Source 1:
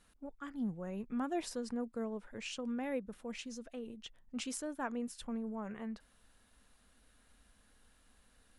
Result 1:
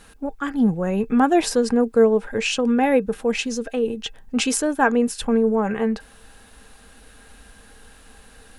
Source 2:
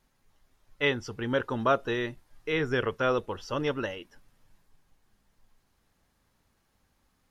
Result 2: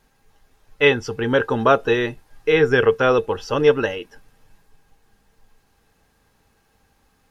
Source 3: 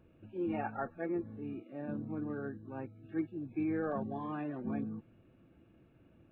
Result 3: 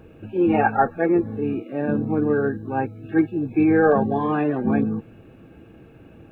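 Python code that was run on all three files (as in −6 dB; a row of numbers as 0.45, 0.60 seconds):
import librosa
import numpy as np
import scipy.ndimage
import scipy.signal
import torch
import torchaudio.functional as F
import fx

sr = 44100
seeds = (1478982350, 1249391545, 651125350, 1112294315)

y = fx.small_body(x, sr, hz=(450.0, 800.0, 1600.0, 2600.0), ring_ms=85, db=10)
y = y * 10.0 ** (-22 / 20.0) / np.sqrt(np.mean(np.square(y)))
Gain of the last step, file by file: +18.5, +8.5, +16.0 decibels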